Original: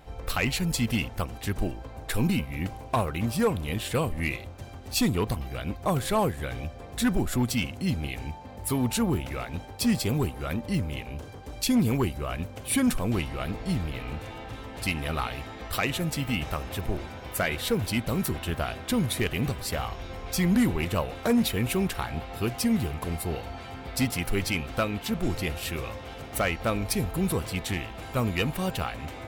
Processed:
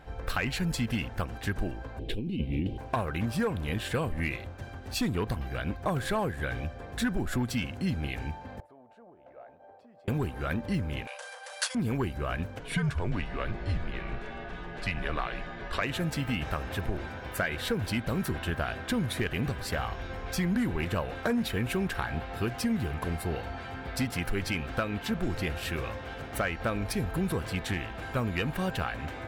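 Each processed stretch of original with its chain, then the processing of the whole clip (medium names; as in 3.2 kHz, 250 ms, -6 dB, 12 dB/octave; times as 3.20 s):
1.99–2.78 s: FFT filter 120 Hz 0 dB, 370 Hz +6 dB, 1.4 kHz -28 dB, 3 kHz +2 dB, 6.2 kHz -16 dB + compressor with a negative ratio -29 dBFS
8.60–10.08 s: compression 12:1, threshold -35 dBFS + band-pass filter 630 Hz, Q 4
11.07–11.75 s: treble shelf 2.2 kHz +11.5 dB + careless resampling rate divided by 3×, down none, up zero stuff + brick-wall FIR band-pass 470–11000 Hz
12.59–15.82 s: frequency shift -95 Hz + distance through air 69 m
whole clip: peaking EQ 1.6 kHz +9 dB 0.27 oct; compression, threshold -25 dBFS; treble shelf 5.6 kHz -9 dB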